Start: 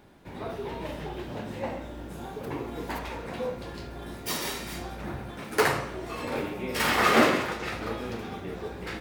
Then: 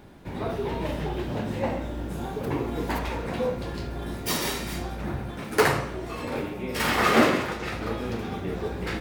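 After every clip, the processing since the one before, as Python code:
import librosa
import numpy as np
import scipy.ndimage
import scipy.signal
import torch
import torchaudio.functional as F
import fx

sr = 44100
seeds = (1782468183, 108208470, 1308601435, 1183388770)

y = fx.low_shelf(x, sr, hz=280.0, db=5.0)
y = fx.rider(y, sr, range_db=4, speed_s=2.0)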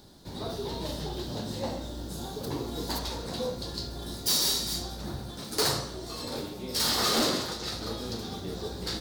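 y = fx.high_shelf_res(x, sr, hz=3200.0, db=10.0, q=3.0)
y = np.clip(y, -10.0 ** (-16.0 / 20.0), 10.0 ** (-16.0 / 20.0))
y = y * 10.0 ** (-5.5 / 20.0)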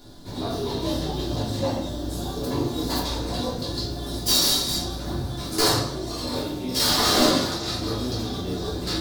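y = fx.room_shoebox(x, sr, seeds[0], volume_m3=190.0, walls='furnished', distance_m=3.1)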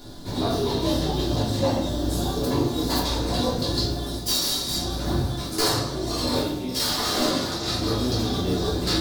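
y = fx.rider(x, sr, range_db=5, speed_s=0.5)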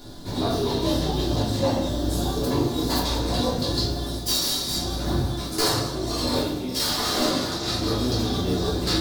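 y = x + 10.0 ** (-16.5 / 20.0) * np.pad(x, (int(187 * sr / 1000.0), 0))[:len(x)]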